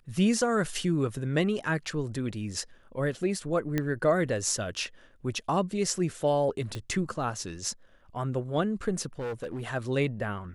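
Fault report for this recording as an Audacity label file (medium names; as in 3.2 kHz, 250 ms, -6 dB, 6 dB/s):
3.780000	3.780000	pop -14 dBFS
6.750000	6.750000	pop -22 dBFS
9.190000	9.680000	clipped -30.5 dBFS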